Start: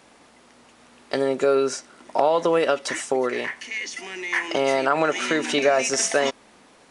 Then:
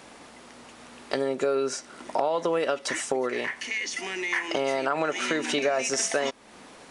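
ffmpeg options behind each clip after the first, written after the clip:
-af "acompressor=threshold=0.0158:ratio=2,volume=1.78"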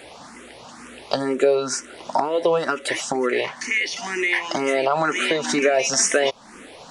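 -filter_complex "[0:a]asplit=2[s0][s1];[s1]afreqshift=2.1[s2];[s0][s2]amix=inputs=2:normalize=1,volume=2.82"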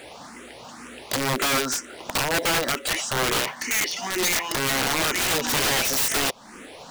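-af "acrusher=bits=5:mode=log:mix=0:aa=0.000001,aeval=exprs='(mod(7.08*val(0)+1,2)-1)/7.08':c=same"

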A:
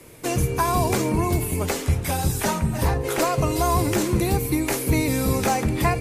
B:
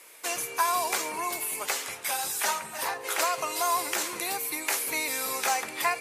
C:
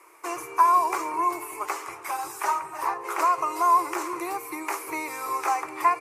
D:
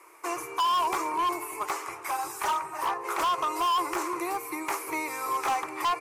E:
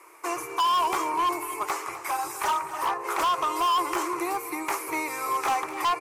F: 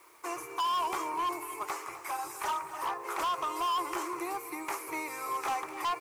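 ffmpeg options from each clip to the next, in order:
-af "highpass=950"
-af "firequalizer=gain_entry='entry(140,0);entry(230,-16);entry(330,12);entry(500,-3);entry(1100,12);entry(1600,-3);entry(2300,-1);entry(3400,-15);entry(5400,-7);entry(14000,-9)':delay=0.05:min_phase=1,volume=0.841"
-af "asoftclip=type=hard:threshold=0.0708"
-af "aecho=1:1:253:0.178,volume=1.26"
-af "acrusher=bits=8:mix=0:aa=0.000001,volume=0.447"

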